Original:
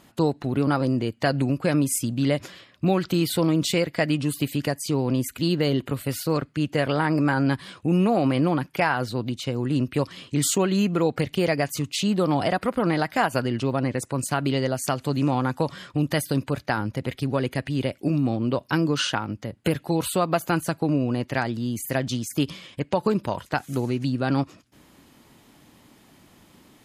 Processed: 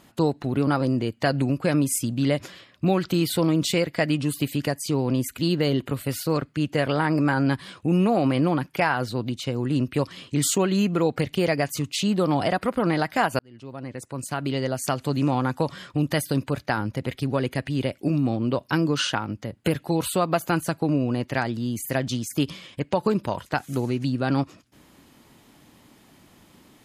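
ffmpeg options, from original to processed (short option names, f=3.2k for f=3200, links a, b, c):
-filter_complex "[0:a]asplit=2[a][b];[a]atrim=end=13.39,asetpts=PTS-STARTPTS,afade=t=out:st=13.386:d=0.004:c=hsin[c];[b]atrim=start=13.39,asetpts=PTS-STARTPTS,afade=t=in:d=1.54[d];[c][d]concat=n=2:v=0:a=1"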